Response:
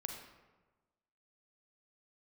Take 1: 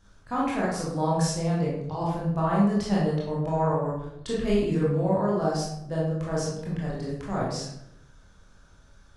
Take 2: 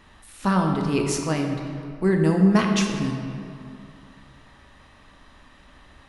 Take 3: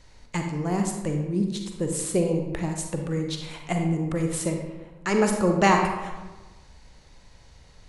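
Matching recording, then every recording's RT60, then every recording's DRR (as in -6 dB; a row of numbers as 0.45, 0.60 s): 3; 0.80, 2.5, 1.3 s; -6.5, 2.0, 3.0 dB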